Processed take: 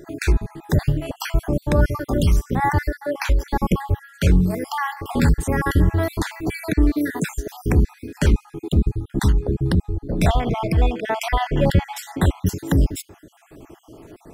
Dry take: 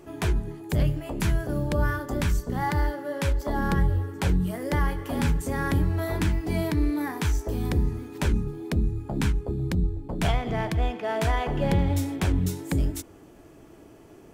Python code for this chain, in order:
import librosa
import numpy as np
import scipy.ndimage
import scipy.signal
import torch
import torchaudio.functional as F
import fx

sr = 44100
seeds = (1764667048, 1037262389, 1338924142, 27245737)

y = fx.spec_dropout(x, sr, seeds[0], share_pct=49)
y = F.gain(torch.from_numpy(y), 8.0).numpy()